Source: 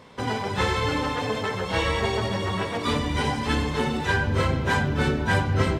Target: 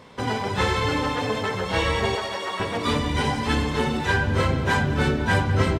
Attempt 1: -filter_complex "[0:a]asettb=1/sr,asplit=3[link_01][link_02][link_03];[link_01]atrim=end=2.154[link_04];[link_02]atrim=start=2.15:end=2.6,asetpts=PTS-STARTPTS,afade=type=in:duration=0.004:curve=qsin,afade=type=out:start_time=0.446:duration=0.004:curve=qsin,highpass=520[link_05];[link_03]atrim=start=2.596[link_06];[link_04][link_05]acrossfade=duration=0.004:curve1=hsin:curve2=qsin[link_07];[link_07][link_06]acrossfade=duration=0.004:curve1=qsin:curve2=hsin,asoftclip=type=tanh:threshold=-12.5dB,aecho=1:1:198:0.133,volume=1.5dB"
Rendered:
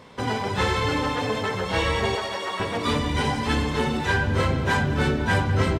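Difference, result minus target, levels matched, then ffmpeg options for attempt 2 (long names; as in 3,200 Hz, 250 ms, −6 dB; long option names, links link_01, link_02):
soft clipping: distortion +14 dB
-filter_complex "[0:a]asettb=1/sr,asplit=3[link_01][link_02][link_03];[link_01]atrim=end=2.154[link_04];[link_02]atrim=start=2.15:end=2.6,asetpts=PTS-STARTPTS,afade=type=in:duration=0.004:curve=qsin,afade=type=out:start_time=0.446:duration=0.004:curve=qsin,highpass=520[link_05];[link_03]atrim=start=2.596[link_06];[link_04][link_05]acrossfade=duration=0.004:curve1=hsin:curve2=qsin[link_07];[link_07][link_06]acrossfade=duration=0.004:curve1=qsin:curve2=hsin,asoftclip=type=tanh:threshold=-4.5dB,aecho=1:1:198:0.133,volume=1.5dB"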